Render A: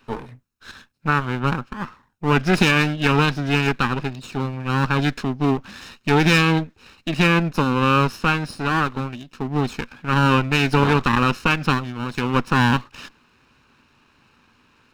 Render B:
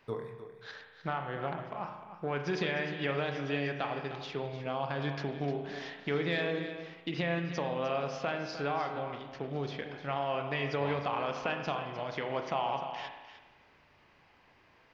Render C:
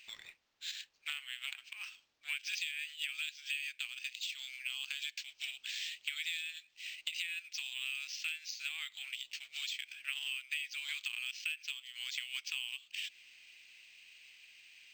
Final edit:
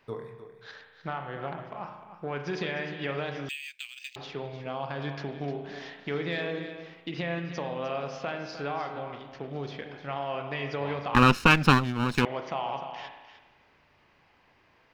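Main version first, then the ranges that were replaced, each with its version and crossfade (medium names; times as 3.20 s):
B
3.49–4.16 s: from C
11.15–12.25 s: from A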